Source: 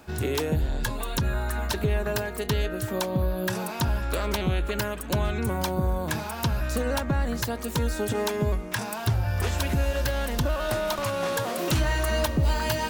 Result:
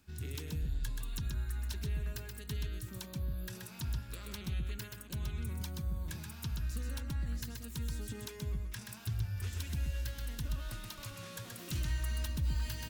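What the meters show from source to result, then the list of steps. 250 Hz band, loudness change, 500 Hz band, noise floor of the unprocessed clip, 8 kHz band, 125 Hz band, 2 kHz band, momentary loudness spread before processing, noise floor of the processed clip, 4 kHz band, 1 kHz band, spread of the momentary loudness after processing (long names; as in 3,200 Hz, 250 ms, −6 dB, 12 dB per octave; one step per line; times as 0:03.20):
−15.5 dB, −12.5 dB, −24.5 dB, −35 dBFS, −11.5 dB, −10.0 dB, −17.0 dB, 4 LU, −49 dBFS, −13.0 dB, −23.5 dB, 7 LU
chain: guitar amp tone stack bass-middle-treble 6-0-2
on a send: single-tap delay 128 ms −4.5 dB
on the sum: level +1.5 dB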